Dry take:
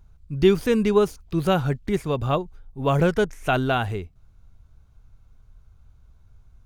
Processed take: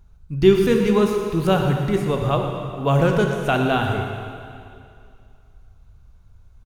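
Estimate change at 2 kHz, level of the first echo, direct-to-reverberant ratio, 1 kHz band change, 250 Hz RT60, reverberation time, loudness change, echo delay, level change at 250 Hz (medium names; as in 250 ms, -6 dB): +3.0 dB, -12.0 dB, 2.0 dB, +3.0 dB, 2.4 s, 2.4 s, +3.0 dB, 117 ms, +3.5 dB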